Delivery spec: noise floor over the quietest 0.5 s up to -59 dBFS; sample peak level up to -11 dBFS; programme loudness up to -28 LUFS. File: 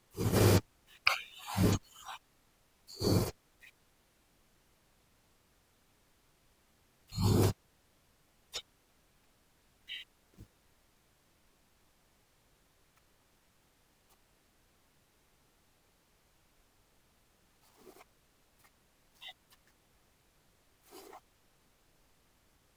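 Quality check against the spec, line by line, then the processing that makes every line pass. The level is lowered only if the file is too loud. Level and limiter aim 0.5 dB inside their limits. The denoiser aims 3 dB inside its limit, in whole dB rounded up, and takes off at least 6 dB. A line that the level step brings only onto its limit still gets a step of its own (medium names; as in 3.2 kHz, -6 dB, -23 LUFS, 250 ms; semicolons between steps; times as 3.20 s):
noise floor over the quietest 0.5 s -70 dBFS: pass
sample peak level -7.5 dBFS: fail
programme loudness -33.0 LUFS: pass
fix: peak limiter -11.5 dBFS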